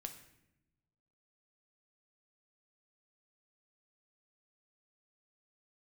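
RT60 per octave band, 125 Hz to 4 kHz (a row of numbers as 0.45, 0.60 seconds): 1.6, 1.4, 1.0, 0.75, 0.80, 0.65 seconds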